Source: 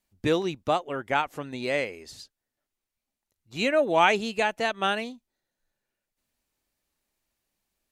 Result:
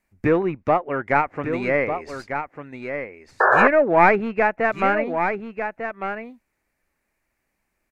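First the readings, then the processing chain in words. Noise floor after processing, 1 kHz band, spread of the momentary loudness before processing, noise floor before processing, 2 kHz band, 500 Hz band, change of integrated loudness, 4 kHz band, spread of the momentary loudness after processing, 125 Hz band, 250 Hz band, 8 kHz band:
-76 dBFS, +8.0 dB, 14 LU, under -85 dBFS, +8.0 dB, +7.0 dB, +5.0 dB, under -10 dB, 15 LU, +7.5 dB, +7.0 dB, no reading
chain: tracing distortion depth 0.14 ms; low-pass that closes with the level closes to 1.8 kHz, closed at -24.5 dBFS; in parallel at -9.5 dB: saturation -26 dBFS, distortion -7 dB; on the sum: resonant high shelf 2.7 kHz -6.5 dB, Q 3; on a send: delay 1198 ms -8 dB; on the sum: painted sound noise, 3.40–3.68 s, 360–1800 Hz -19 dBFS; trim +4 dB

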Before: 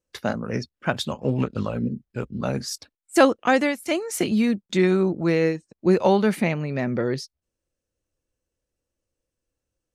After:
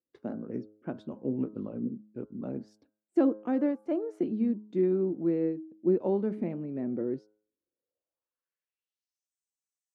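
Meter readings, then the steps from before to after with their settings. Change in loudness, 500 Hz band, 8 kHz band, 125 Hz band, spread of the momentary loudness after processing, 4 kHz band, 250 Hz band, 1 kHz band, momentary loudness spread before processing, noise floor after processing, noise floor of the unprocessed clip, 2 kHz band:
-8.0 dB, -8.5 dB, under -35 dB, -13.0 dB, 12 LU, under -30 dB, -6.0 dB, -18.0 dB, 11 LU, under -85 dBFS, -85 dBFS, -25.0 dB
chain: band-pass sweep 300 Hz -> 7.4 kHz, 7.61–9.32 s; time-frequency box 3.60–4.19 s, 410–1800 Hz +7 dB; de-hum 106 Hz, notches 15; trim -2.5 dB

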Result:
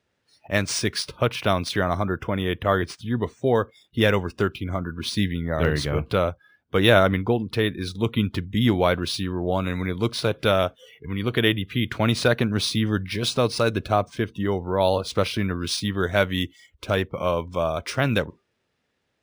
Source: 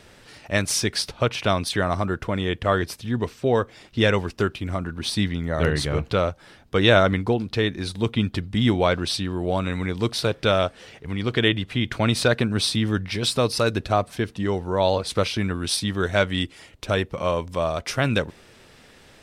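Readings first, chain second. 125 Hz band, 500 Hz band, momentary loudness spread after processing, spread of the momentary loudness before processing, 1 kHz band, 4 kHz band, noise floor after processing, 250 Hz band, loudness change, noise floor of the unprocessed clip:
-0.5 dB, 0.0 dB, 6 LU, 6 LU, 0.0 dB, -1.5 dB, -74 dBFS, 0.0 dB, -0.5 dB, -51 dBFS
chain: high-pass 59 Hz; spectral noise reduction 23 dB; decimation joined by straight lines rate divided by 3×

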